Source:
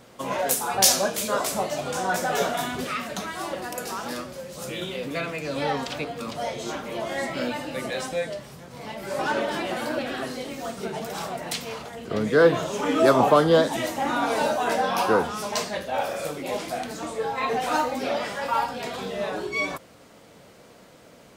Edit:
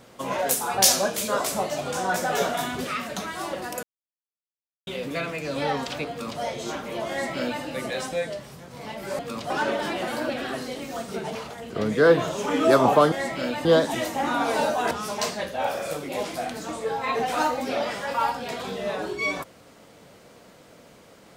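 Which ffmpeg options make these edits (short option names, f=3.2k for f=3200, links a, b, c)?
-filter_complex "[0:a]asplit=9[a][b][c][d][e][f][g][h][i];[a]atrim=end=3.83,asetpts=PTS-STARTPTS,afade=t=out:st=3.826:d=0.004:c=hsin[j];[b]atrim=start=3.83:end=4.87,asetpts=PTS-STARTPTS,volume=0[k];[c]atrim=start=4.87:end=9.192,asetpts=PTS-STARTPTS,afade=t=in:d=0.004:c=hsin[l];[d]atrim=start=6.098:end=6.412[m];[e]atrim=start=9.188:end=11.042[n];[f]atrim=start=11.698:end=13.472[o];[g]atrim=start=7.098:end=7.632[p];[h]atrim=start=13.468:end=14.732[q];[i]atrim=start=15.248[r];[j][k][l]concat=n=3:v=0:a=1[s];[s][m]acrossfade=d=0.004:c1=hsin:c2=hsin[t];[t][n]acrossfade=d=0.004:c1=hsin:c2=hsin[u];[u][o]acrossfade=d=0.004:c1=hsin:c2=hsin[v];[v][p]acrossfade=d=0.004:c1=hsin:c2=hsin[w];[w][q]acrossfade=d=0.004:c1=hsin:c2=hsin[x];[x][r]acrossfade=d=0.004:c1=hsin:c2=hsin"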